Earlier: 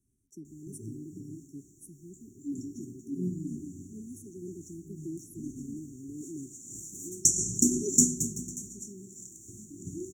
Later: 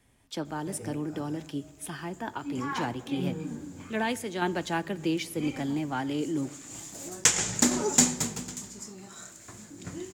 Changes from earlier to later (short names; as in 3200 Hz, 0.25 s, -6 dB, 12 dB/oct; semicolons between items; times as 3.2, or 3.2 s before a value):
speech +10.5 dB; master: remove brick-wall FIR band-stop 420–5500 Hz